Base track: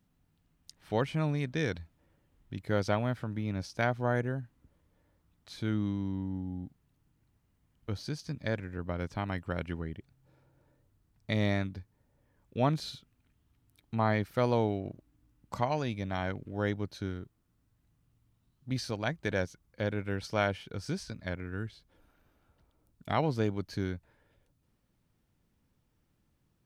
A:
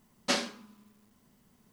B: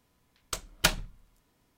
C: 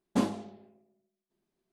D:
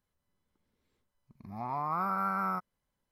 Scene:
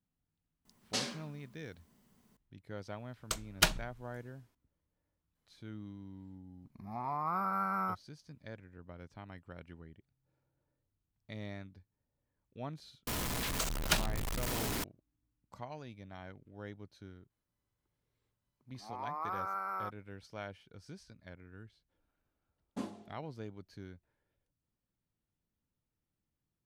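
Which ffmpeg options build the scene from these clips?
-filter_complex "[2:a]asplit=2[s0][s1];[4:a]asplit=2[s2][s3];[0:a]volume=0.178[s4];[1:a]acrossover=split=190|3000[s5][s6][s7];[s6]acompressor=threshold=0.0178:ratio=6:attack=3.2:release=140:knee=2.83:detection=peak[s8];[s5][s8][s7]amix=inputs=3:normalize=0[s9];[s0]dynaudnorm=f=110:g=7:m=3.76[s10];[s1]aeval=exprs='val(0)+0.5*0.0841*sgn(val(0))':c=same[s11];[s3]highpass=f=300:w=0.5412,highpass=f=300:w=1.3066[s12];[s9]atrim=end=1.72,asetpts=PTS-STARTPTS,volume=0.668,afade=t=in:d=0.004:c=hsin,afade=t=out:st=1.716:d=0.004:c=hsin,adelay=650[s13];[s10]atrim=end=1.77,asetpts=PTS-STARTPTS,volume=0.376,afade=t=in:d=0.004:c=hsin,afade=t=out:st=1.766:d=0.004:c=hsin,adelay=2780[s14];[s2]atrim=end=3.11,asetpts=PTS-STARTPTS,volume=0.75,afade=t=in:d=0.004:c=hsin,afade=t=out:st=3.106:d=0.004:c=hsin,adelay=5350[s15];[s11]atrim=end=1.77,asetpts=PTS-STARTPTS,volume=0.376,afade=t=in:d=0.004:c=hsin,afade=t=out:st=1.766:d=0.004:c=hsin,adelay=13070[s16];[s12]atrim=end=3.11,asetpts=PTS-STARTPTS,volume=0.501,afade=t=in:d=0.004:c=hsin,afade=t=out:st=3.106:d=0.004:c=hsin,adelay=17300[s17];[3:a]atrim=end=1.72,asetpts=PTS-STARTPTS,volume=0.224,afade=t=in:d=0.004:c=hsin,afade=t=out:st=1.716:d=0.004:c=hsin,adelay=22610[s18];[s4][s13][s14][s15][s16][s17][s18]amix=inputs=7:normalize=0"

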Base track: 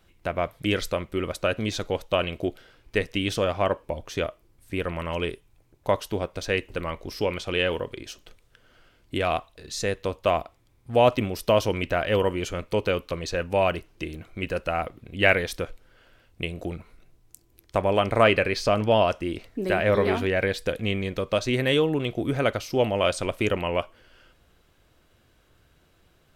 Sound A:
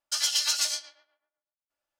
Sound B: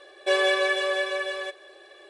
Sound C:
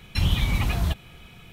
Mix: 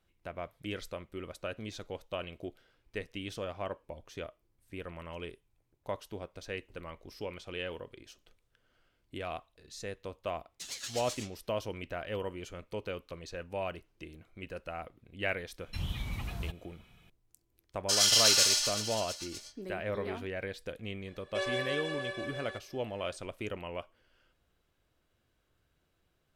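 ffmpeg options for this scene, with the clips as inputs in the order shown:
-filter_complex "[1:a]asplit=2[s0][s1];[0:a]volume=0.2[s2];[s0]aeval=exprs='val(0)*sin(2*PI*1200*n/s+1200*0.25/5.5*sin(2*PI*5.5*n/s))':c=same[s3];[s1]aecho=1:1:30|69|119.7|185.6|271.3|382.7|527.5|715.7|960.4:0.794|0.631|0.501|0.398|0.316|0.251|0.2|0.158|0.126[s4];[s3]atrim=end=1.99,asetpts=PTS-STARTPTS,volume=0.237,afade=t=in:d=0.004:c=hsin,afade=t=out:st=1.986:d=0.004:c=hsin,adelay=10480[s5];[3:a]atrim=end=1.52,asetpts=PTS-STARTPTS,volume=0.2,afade=t=in:d=0.004:c=hsin,afade=t=out:st=1.516:d=0.004:c=hsin,adelay=15580[s6];[s4]atrim=end=1.99,asetpts=PTS-STARTPTS,volume=0.841,afade=t=in:d=0.004:c=hsin,afade=t=out:st=1.986:d=0.004:c=hsin,adelay=17770[s7];[2:a]atrim=end=2.09,asetpts=PTS-STARTPTS,volume=0.251,afade=t=in:d=0.004:c=hsin,afade=t=out:st=2.086:d=0.004:c=hsin,adelay=21080[s8];[s2][s5][s6][s7][s8]amix=inputs=5:normalize=0"

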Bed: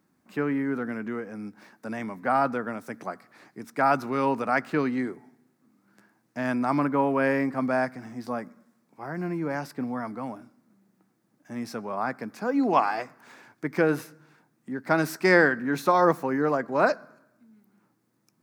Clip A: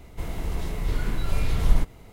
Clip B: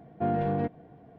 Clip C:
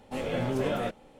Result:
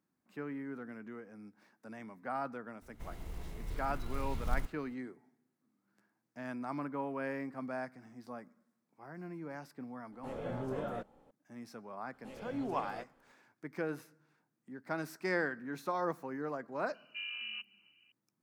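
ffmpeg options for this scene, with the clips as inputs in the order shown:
-filter_complex "[3:a]asplit=2[s0][s1];[0:a]volume=0.188[s2];[1:a]acrusher=bits=7:mode=log:mix=0:aa=0.000001[s3];[s0]highshelf=f=1800:t=q:w=1.5:g=-7[s4];[2:a]lowpass=f=2600:t=q:w=0.5098,lowpass=f=2600:t=q:w=0.6013,lowpass=f=2600:t=q:w=0.9,lowpass=f=2600:t=q:w=2.563,afreqshift=-3100[s5];[s3]atrim=end=2.12,asetpts=PTS-STARTPTS,volume=0.178,afade=t=in:d=0.004:c=hsin,afade=t=out:st=2.116:d=0.004:c=hsin,adelay=2820[s6];[s4]atrim=end=1.19,asetpts=PTS-STARTPTS,volume=0.335,afade=t=in:d=0.004:c=hsin,afade=t=out:st=1.186:d=0.004:c=hsin,adelay=10120[s7];[s1]atrim=end=1.19,asetpts=PTS-STARTPTS,volume=0.141,afade=t=in:d=0.004:c=hsin,afade=t=out:st=1.186:d=0.004:c=hsin,adelay=12130[s8];[s5]atrim=end=1.18,asetpts=PTS-STARTPTS,volume=0.178,afade=t=in:d=0.004:c=hsin,afade=t=out:st=1.176:d=0.004:c=hsin,adelay=16940[s9];[s2][s6][s7][s8][s9]amix=inputs=5:normalize=0"

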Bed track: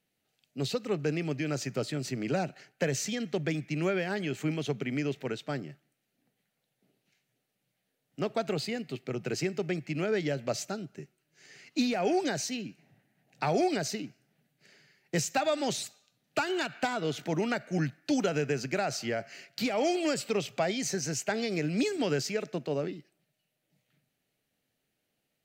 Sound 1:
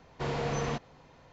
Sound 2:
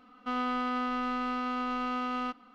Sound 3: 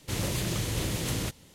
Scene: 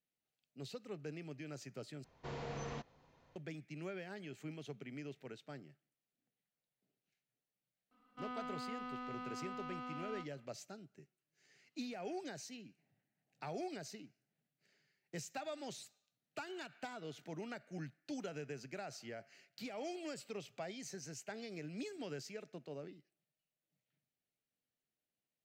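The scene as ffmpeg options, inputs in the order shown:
-filter_complex "[0:a]volume=0.158[s0];[2:a]asplit=2[s1][s2];[s2]adelay=32,volume=0.299[s3];[s1][s3]amix=inputs=2:normalize=0[s4];[s0]asplit=2[s5][s6];[s5]atrim=end=2.044[s7];[1:a]atrim=end=1.32,asetpts=PTS-STARTPTS,volume=0.251[s8];[s6]atrim=start=3.356[s9];[s4]atrim=end=2.54,asetpts=PTS-STARTPTS,volume=0.158,afade=t=in:d=0.004:c=hsin,afade=t=out:st=2.536:d=0.004:c=hsin,adelay=7910[s10];[s7][s8]acrossfade=d=0.004:c1=hsin:c2=hsin[s11];[s11][s9]acrossfade=d=0.004:c1=hsin:c2=hsin[s12];[s12][s10]amix=inputs=2:normalize=0"

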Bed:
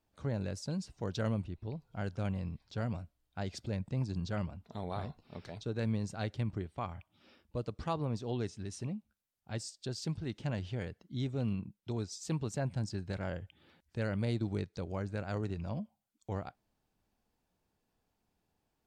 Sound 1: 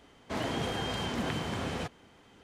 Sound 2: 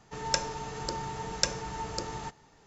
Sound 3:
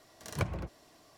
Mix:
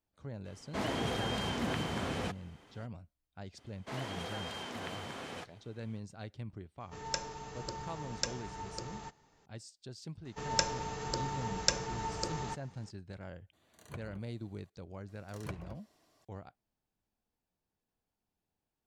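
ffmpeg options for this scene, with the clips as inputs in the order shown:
-filter_complex "[1:a]asplit=2[s0][s1];[2:a]asplit=2[s2][s3];[3:a]asplit=2[s4][s5];[0:a]volume=0.376[s6];[s1]highpass=f=420:p=1[s7];[s4]asuperstop=centerf=5300:order=4:qfactor=4.4[s8];[s0]atrim=end=2.43,asetpts=PTS-STARTPTS,volume=0.841,afade=t=in:d=0.02,afade=t=out:st=2.41:d=0.02,adelay=440[s9];[s7]atrim=end=2.43,asetpts=PTS-STARTPTS,volume=0.501,afade=t=in:d=0.004:c=hsin,afade=t=out:st=2.426:d=0.004:c=hsin,adelay=157437S[s10];[s2]atrim=end=2.66,asetpts=PTS-STARTPTS,volume=0.422,afade=t=in:d=0.004:c=hsin,afade=t=out:st=2.656:d=0.004:c=hsin,adelay=6800[s11];[s3]atrim=end=2.66,asetpts=PTS-STARTPTS,volume=0.841,afade=t=in:d=0.004:c=hsin,afade=t=out:st=2.656:d=0.004:c=hsin,adelay=10250[s12];[s8]atrim=end=1.17,asetpts=PTS-STARTPTS,volume=0.2,afade=t=in:d=0.004:c=hsin,afade=t=out:st=1.166:d=0.004:c=hsin,adelay=13530[s13];[s5]atrim=end=1.17,asetpts=PTS-STARTPTS,volume=0.316,afade=t=in:d=0.004:c=hsin,afade=t=out:st=1.166:d=0.004:c=hsin,adelay=665028S[s14];[s6][s9][s10][s11][s12][s13][s14]amix=inputs=7:normalize=0"

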